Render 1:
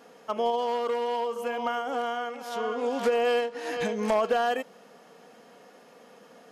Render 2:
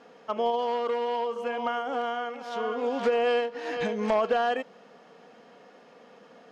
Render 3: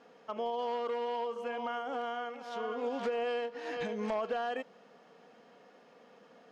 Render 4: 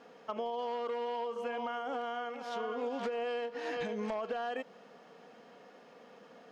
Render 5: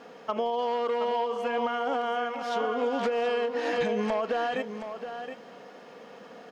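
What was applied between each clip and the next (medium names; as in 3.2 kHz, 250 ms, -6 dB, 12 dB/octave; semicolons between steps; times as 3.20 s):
low-pass 4.7 kHz 12 dB/octave
peak limiter -21 dBFS, peak gain reduction 3.5 dB; trim -6 dB
compression, threshold -36 dBFS, peak gain reduction 6.5 dB; trim +3 dB
delay 721 ms -9.5 dB; trim +8 dB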